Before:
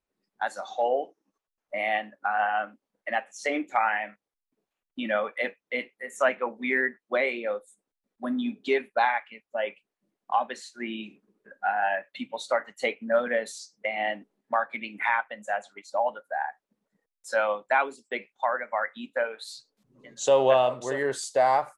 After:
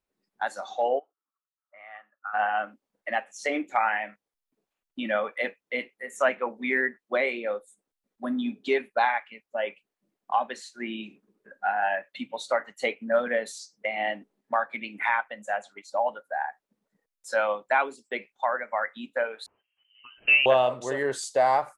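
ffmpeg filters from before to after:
ffmpeg -i in.wav -filter_complex "[0:a]asplit=3[link_01][link_02][link_03];[link_01]afade=type=out:start_time=0.98:duration=0.02[link_04];[link_02]bandpass=frequency=1300:width_type=q:width=8.1,afade=type=in:start_time=0.98:duration=0.02,afade=type=out:start_time=2.33:duration=0.02[link_05];[link_03]afade=type=in:start_time=2.33:duration=0.02[link_06];[link_04][link_05][link_06]amix=inputs=3:normalize=0,asettb=1/sr,asplit=3[link_07][link_08][link_09];[link_07]atrim=end=19.464[link_10];[link_08]atrim=start=19.46:end=20.46,asetpts=PTS-STARTPTS,afade=type=in:duration=0.004:curve=qsin,afade=type=out:start_time=0.996:duration=0.004:curve=qsin,lowpass=frequency=2700:width_type=q:width=0.5098,lowpass=frequency=2700:width_type=q:width=0.6013,lowpass=frequency=2700:width_type=q:width=0.9,lowpass=frequency=2700:width_type=q:width=2.563,afreqshift=-3200[link_11];[link_09]atrim=start=20.456[link_12];[link_10][link_11]acrossfade=duration=0.004:curve1=hsin:curve2=qsin[link_13];[link_13][link_12]acrossfade=duration=0.004:curve1=qsin:curve2=hsin" out.wav

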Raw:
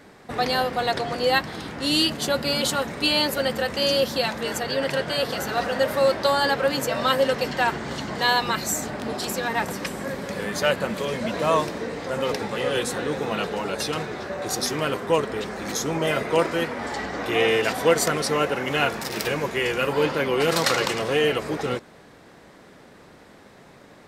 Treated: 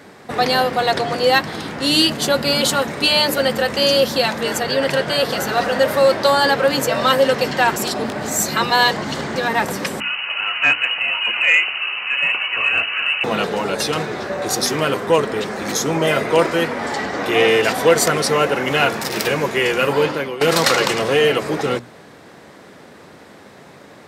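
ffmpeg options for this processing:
ffmpeg -i in.wav -filter_complex "[0:a]asettb=1/sr,asplit=3[link_01][link_02][link_03];[link_01]atrim=end=10.004[link_04];[link_02]atrim=start=10:end=13.24,asetpts=PTS-STARTPTS,afade=type=in:duration=0.004:curve=qsin,afade=type=out:start_time=3.236:duration=0.004:curve=qsin,lowpass=frequency=2600:width_type=q:width=0.5098,lowpass=frequency=2600:width_type=q:width=0.6013,lowpass=frequency=2600:width_type=q:width=0.9,lowpass=frequency=2600:width_type=q:width=2.563,afreqshift=-3100[link_05];[link_03]atrim=start=13.236[link_06];[link_04][link_05]acrossfade=duration=0.004:curve1=hsin:curve2=qsin[link_07];[link_07][link_06]acrossfade=duration=0.004:curve1=qsin:curve2=hsin,asplit=4[link_08][link_09][link_10][link_11];[link_08]atrim=end=7.762[link_12];[link_09]atrim=start=7.758:end=9.362,asetpts=PTS-STARTPTS,areverse[link_13];[link_10]atrim=start=9.358:end=20.41,asetpts=PTS-STARTPTS,afade=type=out:start_time=10.582:duration=0.47:silence=0.149624[link_14];[link_11]atrim=start=20.41,asetpts=PTS-STARTPTS,afade=type=in:duration=0.004:curve=hsin:silence=0.149624[link_15];[link_12][link_13]acrossfade=duration=0.004:curve1=hsin:curve2=hsin[link_16];[link_14][link_15]concat=n=2:v=0:a=1[link_17];[link_16][link_17]acrossfade=duration=0.004:curve1=hsin:curve2=hsin,acontrast=71,highpass=84,bandreject=frequency=60:width_type=h:width=6,bandreject=frequency=120:width_type=h:width=6,bandreject=frequency=180:width_type=h:width=6,bandreject=frequency=240:width_type=h:width=6,bandreject=frequency=300:width_type=h:width=6" out.wav

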